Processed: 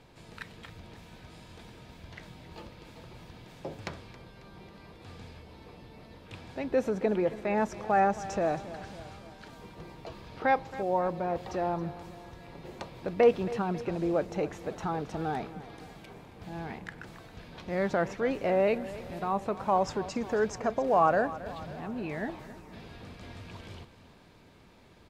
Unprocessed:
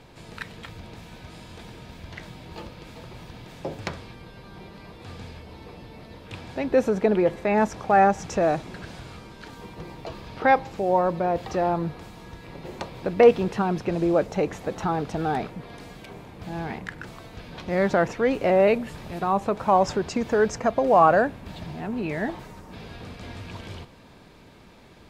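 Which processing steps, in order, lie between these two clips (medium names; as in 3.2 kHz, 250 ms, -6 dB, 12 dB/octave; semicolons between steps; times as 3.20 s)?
feedback delay 272 ms, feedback 57%, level -16 dB; trim -7 dB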